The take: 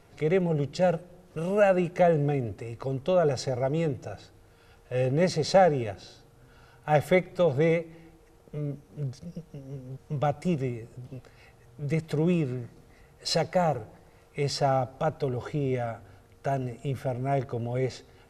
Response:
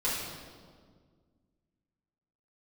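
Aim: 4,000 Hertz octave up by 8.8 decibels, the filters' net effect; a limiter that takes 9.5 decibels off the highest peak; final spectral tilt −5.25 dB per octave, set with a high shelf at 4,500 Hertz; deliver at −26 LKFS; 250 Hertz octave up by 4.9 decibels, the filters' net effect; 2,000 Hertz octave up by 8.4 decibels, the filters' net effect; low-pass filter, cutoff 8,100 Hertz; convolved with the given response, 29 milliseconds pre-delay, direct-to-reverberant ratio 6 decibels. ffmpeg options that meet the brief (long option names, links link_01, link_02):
-filter_complex "[0:a]lowpass=8100,equalizer=frequency=250:width_type=o:gain=8,equalizer=frequency=2000:width_type=o:gain=7.5,equalizer=frequency=4000:width_type=o:gain=6.5,highshelf=frequency=4500:gain=5,alimiter=limit=-15.5dB:level=0:latency=1,asplit=2[link_01][link_02];[1:a]atrim=start_sample=2205,adelay=29[link_03];[link_02][link_03]afir=irnorm=-1:irlink=0,volume=-14.5dB[link_04];[link_01][link_04]amix=inputs=2:normalize=0,volume=0.5dB"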